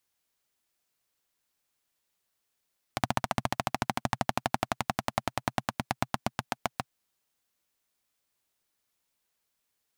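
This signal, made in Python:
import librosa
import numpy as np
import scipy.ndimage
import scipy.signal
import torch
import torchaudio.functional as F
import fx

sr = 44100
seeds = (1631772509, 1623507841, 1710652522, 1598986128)

y = fx.engine_single_rev(sr, seeds[0], length_s=3.96, rpm=1800, resonances_hz=(130.0, 220.0, 730.0), end_rpm=800)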